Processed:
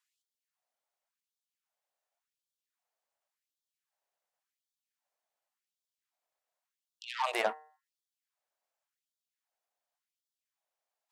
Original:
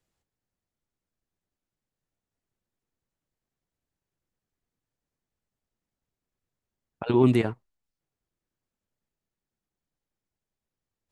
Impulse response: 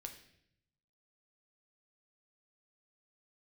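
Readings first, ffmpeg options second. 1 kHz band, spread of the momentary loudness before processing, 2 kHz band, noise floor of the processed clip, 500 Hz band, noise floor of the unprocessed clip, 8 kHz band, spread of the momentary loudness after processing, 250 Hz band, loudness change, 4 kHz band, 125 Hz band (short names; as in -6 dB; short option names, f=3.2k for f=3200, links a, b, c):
+0.5 dB, 13 LU, +1.5 dB, under -85 dBFS, -11.5 dB, under -85 dBFS, n/a, 18 LU, -27.0 dB, -10.5 dB, +2.0 dB, under -40 dB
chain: -af "lowshelf=f=450:t=q:w=3:g=-13.5,bandreject=f=153.5:t=h:w=4,bandreject=f=307:t=h:w=4,bandreject=f=460.5:t=h:w=4,bandreject=f=614:t=h:w=4,bandreject=f=767.5:t=h:w=4,bandreject=f=921:t=h:w=4,bandreject=f=1.0745k:t=h:w=4,bandreject=f=1.228k:t=h:w=4,bandreject=f=1.3815k:t=h:w=4,bandreject=f=1.535k:t=h:w=4,bandreject=f=1.6885k:t=h:w=4,bandreject=f=1.842k:t=h:w=4,bandreject=f=1.9955k:t=h:w=4,aeval=exprs='0.178*(cos(1*acos(clip(val(0)/0.178,-1,1)))-cos(1*PI/2))+0.0158*(cos(8*acos(clip(val(0)/0.178,-1,1)))-cos(8*PI/2))':c=same,afftfilt=real='re*gte(b*sr/1024,210*pow(3200/210,0.5+0.5*sin(2*PI*0.9*pts/sr)))':imag='im*gte(b*sr/1024,210*pow(3200/210,0.5+0.5*sin(2*PI*0.9*pts/sr)))':win_size=1024:overlap=0.75"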